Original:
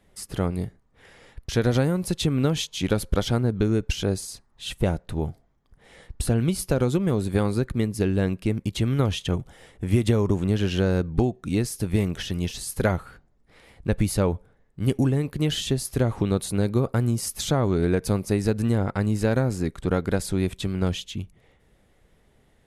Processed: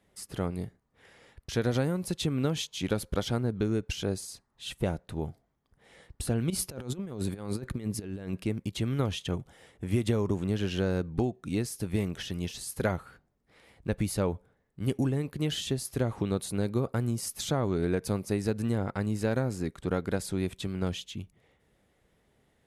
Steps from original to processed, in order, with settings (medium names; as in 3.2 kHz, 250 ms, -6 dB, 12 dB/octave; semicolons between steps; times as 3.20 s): high-pass 84 Hz 6 dB/octave; 6.50–8.44 s: compressor with a negative ratio -28 dBFS, ratio -0.5; trim -5.5 dB